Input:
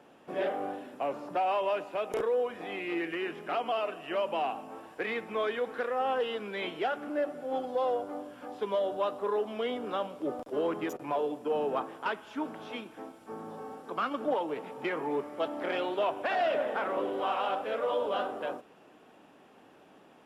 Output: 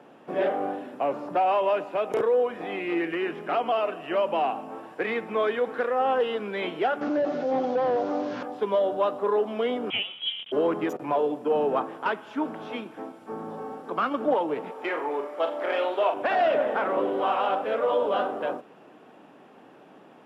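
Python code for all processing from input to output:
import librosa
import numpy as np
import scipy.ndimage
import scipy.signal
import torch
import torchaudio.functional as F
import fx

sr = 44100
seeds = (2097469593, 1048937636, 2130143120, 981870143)

y = fx.chain(x, sr, fx.delta_mod(bps=32000, step_db=-47.5),
    fx.high_shelf(hz=5000.0, db=-5.5),
    fx.env_flatten(amount_pct=50), at=(7.01, 8.43))
y = fx.chain(y, sr, fx.doubler(ms=14.0, db=-8),
    fx.freq_invert(carrier_hz=3600), at=(9.9, 10.52))
y = fx.chain(y, sr, fx.highpass(hz=450.0, slope=12),
    fx.room_flutter(wall_m=7.3, rt60_s=0.34), at=(14.71, 16.14))
y = scipy.signal.sosfilt(scipy.signal.butter(4, 110.0, 'highpass', fs=sr, output='sos'), y)
y = fx.high_shelf(y, sr, hz=3200.0, db=-9.0)
y = y * librosa.db_to_amplitude(6.5)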